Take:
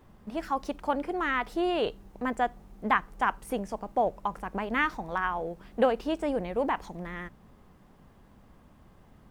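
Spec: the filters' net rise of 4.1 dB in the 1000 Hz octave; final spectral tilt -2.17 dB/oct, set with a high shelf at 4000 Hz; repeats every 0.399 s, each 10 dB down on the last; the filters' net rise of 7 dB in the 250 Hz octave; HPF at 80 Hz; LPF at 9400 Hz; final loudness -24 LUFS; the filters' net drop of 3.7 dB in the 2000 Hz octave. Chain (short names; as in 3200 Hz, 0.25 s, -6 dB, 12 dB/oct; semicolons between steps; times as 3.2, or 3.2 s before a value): HPF 80 Hz; LPF 9400 Hz; bell 250 Hz +8.5 dB; bell 1000 Hz +6.5 dB; bell 2000 Hz -6 dB; high shelf 4000 Hz -8 dB; feedback echo 0.399 s, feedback 32%, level -10 dB; gain +2.5 dB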